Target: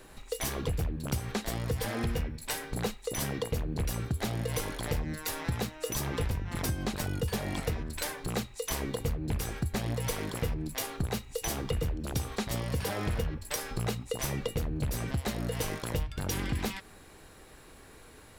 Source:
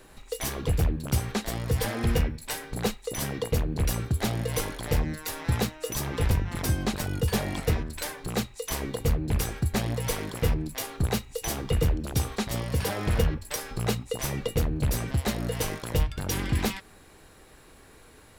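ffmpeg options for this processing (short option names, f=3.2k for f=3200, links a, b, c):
-af "acompressor=threshold=-28dB:ratio=6"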